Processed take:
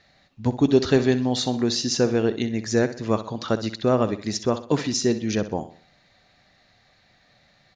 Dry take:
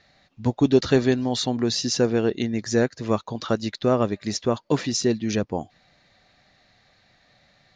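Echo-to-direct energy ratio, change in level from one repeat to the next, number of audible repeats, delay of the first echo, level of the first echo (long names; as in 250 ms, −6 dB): −12.0 dB, −8.0 dB, 3, 63 ms, −13.0 dB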